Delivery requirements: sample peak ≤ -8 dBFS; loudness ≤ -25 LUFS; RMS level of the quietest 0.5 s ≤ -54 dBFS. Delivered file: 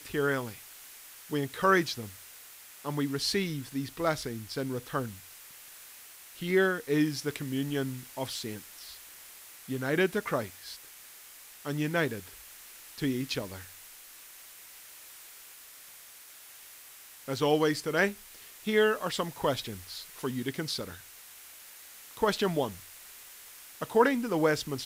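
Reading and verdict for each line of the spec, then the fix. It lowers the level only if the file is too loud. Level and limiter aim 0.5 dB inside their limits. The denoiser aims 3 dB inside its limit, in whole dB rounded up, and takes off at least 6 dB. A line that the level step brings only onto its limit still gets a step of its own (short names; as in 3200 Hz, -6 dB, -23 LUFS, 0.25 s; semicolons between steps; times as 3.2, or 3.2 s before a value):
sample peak -10.5 dBFS: OK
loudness -30.5 LUFS: OK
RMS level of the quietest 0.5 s -51 dBFS: fail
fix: denoiser 6 dB, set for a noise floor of -51 dBFS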